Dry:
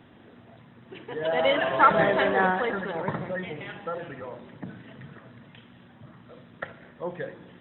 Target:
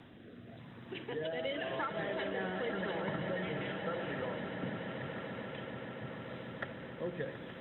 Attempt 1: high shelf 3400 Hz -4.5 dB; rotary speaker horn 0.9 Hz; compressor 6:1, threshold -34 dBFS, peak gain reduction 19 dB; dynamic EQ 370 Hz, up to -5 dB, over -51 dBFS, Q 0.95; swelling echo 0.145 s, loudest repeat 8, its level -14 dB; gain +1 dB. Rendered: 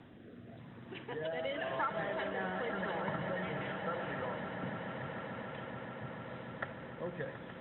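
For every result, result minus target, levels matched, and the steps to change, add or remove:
1000 Hz band +3.0 dB; 4000 Hz band -3.0 dB
change: dynamic EQ 1000 Hz, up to -5 dB, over -51 dBFS, Q 0.95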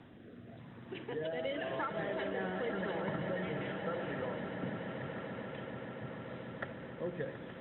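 4000 Hz band -3.5 dB
change: high shelf 3400 Hz +5 dB

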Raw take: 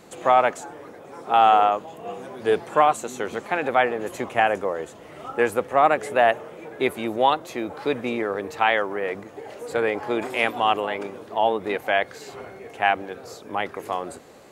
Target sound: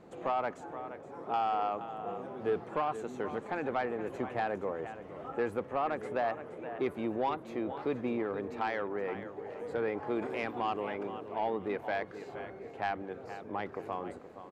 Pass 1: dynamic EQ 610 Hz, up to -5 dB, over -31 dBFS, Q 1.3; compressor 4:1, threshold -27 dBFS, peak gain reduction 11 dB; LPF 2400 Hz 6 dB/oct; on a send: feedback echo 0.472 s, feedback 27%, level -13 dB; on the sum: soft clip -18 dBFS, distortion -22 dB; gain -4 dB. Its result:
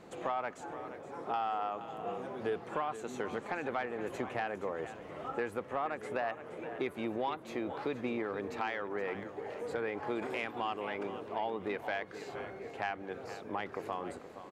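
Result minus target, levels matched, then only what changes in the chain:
compressor: peak gain reduction +7 dB; 2000 Hz band +3.0 dB
change: compressor 4:1, threshold -18 dBFS, peak gain reduction 4.5 dB; change: LPF 870 Hz 6 dB/oct

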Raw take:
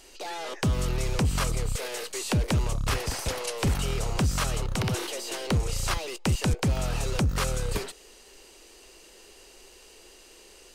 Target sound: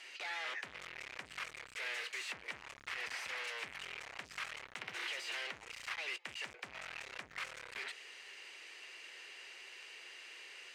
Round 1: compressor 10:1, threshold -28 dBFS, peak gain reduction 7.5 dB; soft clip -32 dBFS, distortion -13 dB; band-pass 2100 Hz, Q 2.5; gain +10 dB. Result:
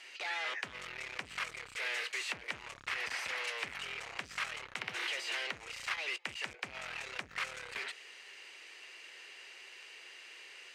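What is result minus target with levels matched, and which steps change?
soft clip: distortion -6 dB
change: soft clip -39.5 dBFS, distortion -7 dB

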